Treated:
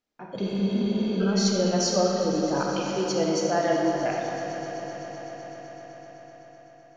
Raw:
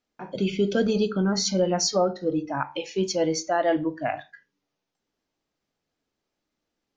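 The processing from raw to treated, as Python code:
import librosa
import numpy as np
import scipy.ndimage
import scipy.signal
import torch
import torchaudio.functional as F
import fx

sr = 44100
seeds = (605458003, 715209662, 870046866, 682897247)

y = fx.echo_swell(x, sr, ms=127, loudest=5, wet_db=-18)
y = fx.rev_freeverb(y, sr, rt60_s=3.4, hf_ratio=0.6, predelay_ms=10, drr_db=-1.0)
y = fx.spec_repair(y, sr, seeds[0], start_s=0.45, length_s=0.73, low_hz=280.0, high_hz=7200.0, source='before')
y = y * 10.0 ** (-3.5 / 20.0)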